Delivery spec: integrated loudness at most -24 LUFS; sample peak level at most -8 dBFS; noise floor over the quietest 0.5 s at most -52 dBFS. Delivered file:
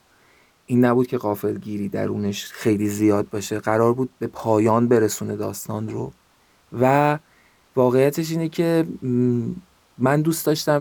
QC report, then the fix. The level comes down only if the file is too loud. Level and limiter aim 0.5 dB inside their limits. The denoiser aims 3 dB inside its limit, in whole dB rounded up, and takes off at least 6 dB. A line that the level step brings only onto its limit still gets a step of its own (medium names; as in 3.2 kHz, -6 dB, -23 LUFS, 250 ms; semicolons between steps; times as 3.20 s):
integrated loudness -21.5 LUFS: fail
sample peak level -5.0 dBFS: fail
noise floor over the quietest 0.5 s -59 dBFS: pass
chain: trim -3 dB; peak limiter -8.5 dBFS